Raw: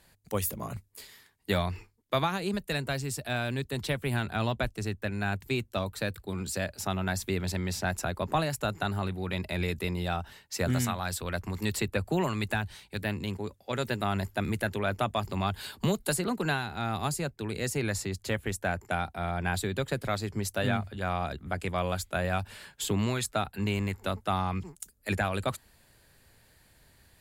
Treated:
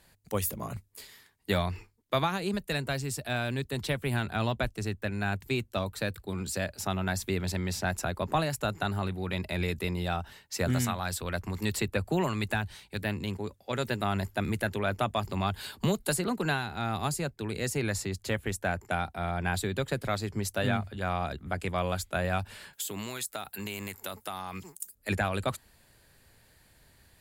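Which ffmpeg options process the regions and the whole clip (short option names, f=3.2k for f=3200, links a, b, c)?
-filter_complex "[0:a]asettb=1/sr,asplit=3[a][b][c];[a]atrim=end=22.734[d];[b]atrim=start=22.73:end=24.95,asetpts=PTS-STARTPTS,afade=t=in:d=0.004:c=qsin,afade=t=out:st=2.216:d=0.004:c=qsin,aemphasis=mode=production:type=bsi,acompressor=threshold=-33dB:ratio=4:attack=3.2:release=140:knee=1:detection=peak[e];[c]atrim=start=24.946[f];[d][e]acrossfade=d=0.004:c1=hsin:c2=qsin[g];[g][f]acrossfade=d=0.004:c1=qsin:c2=hsin"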